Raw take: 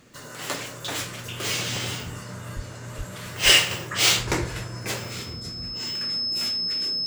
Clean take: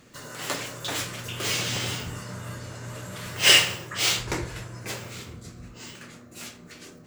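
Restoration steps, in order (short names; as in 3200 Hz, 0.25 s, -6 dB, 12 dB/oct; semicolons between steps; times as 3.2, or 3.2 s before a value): notch 5200 Hz, Q 30; de-plosive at 2.55/2.97/3.44; gain correction -4.5 dB, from 3.71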